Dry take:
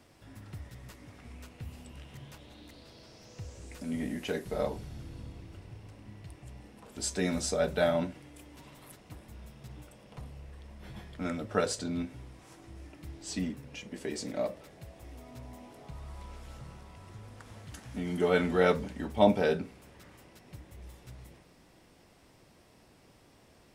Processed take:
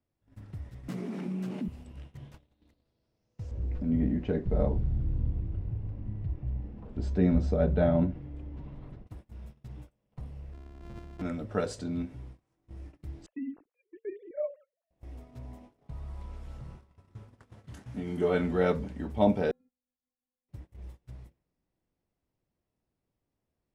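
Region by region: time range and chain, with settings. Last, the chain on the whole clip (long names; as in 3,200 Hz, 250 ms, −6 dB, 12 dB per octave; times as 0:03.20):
0:00.88–0:01.68: low-shelf EQ 180 Hz +8 dB + frequency shifter +120 Hz + envelope flattener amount 70%
0:03.51–0:09.07: low-pass filter 4,500 Hz + spectral tilt −3 dB per octave
0:10.53–0:11.22: samples sorted by size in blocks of 128 samples + high-shelf EQ 8,900 Hz −11 dB
0:13.26–0:14.91: three sine waves on the formant tracks + high-frequency loss of the air 440 metres
0:16.75–0:18.35: high-pass filter 66 Hz + double-tracking delay 25 ms −7 dB
0:19.51–0:20.49: downward compressor 8 to 1, threshold −48 dBFS + stiff-string resonator 250 Hz, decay 0.53 s, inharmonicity 0.008 + one half of a high-frequency compander decoder only
whole clip: noise gate −48 dBFS, range −24 dB; spectral tilt −2 dB per octave; level −3.5 dB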